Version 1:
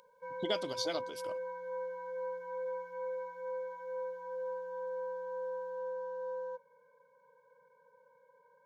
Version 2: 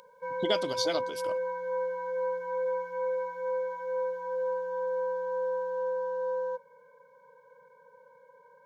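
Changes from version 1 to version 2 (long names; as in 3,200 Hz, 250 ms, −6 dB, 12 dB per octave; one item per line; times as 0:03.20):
speech +5.5 dB
background +8.0 dB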